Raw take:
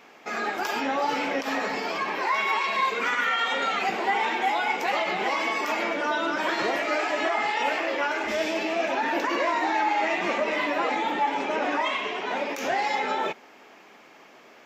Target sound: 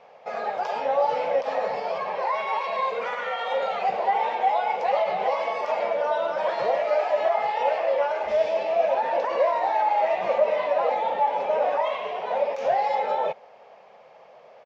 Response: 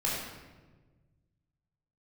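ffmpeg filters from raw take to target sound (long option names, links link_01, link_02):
-af "firequalizer=gain_entry='entry(150,0);entry(300,-20);entry(510,9);entry(1400,-8);entry(4500,-8);entry(10000,-27)':delay=0.05:min_phase=1"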